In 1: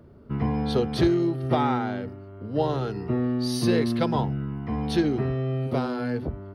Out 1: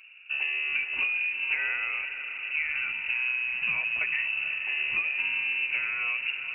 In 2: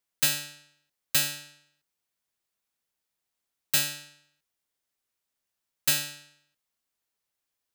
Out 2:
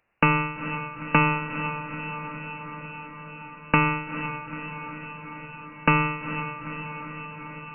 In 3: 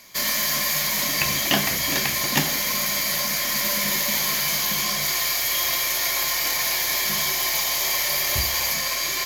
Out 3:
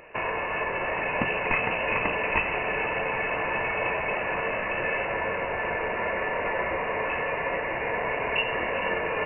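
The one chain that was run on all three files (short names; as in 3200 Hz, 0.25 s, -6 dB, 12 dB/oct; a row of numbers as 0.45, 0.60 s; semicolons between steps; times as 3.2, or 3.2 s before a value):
compressor 4:1, threshold -25 dBFS; on a send: diffused feedback echo 0.455 s, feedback 74%, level -10 dB; on the sum: inverted band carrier 2800 Hz; match loudness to -27 LUFS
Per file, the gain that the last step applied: -1.5, +18.5, +5.0 dB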